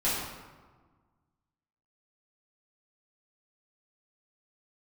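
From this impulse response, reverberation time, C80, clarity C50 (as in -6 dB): 1.4 s, 2.0 dB, -0.5 dB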